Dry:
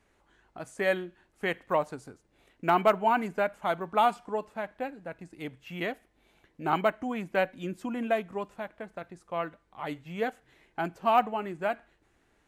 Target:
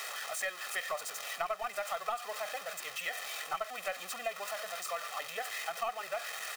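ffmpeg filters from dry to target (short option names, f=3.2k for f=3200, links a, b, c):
-filter_complex "[0:a]aeval=exprs='val(0)+0.5*0.0299*sgn(val(0))':c=same,highpass=960,asplit=2[a][b];[b]aeval=exprs='clip(val(0),-1,0.0447)':c=same,volume=-6dB[c];[a][c]amix=inputs=2:normalize=0,aecho=1:1:1.6:0.8,areverse,acompressor=mode=upward:threshold=-30dB:ratio=2.5,areverse,atempo=1.9,acompressor=threshold=-26dB:ratio=5,volume=-6dB"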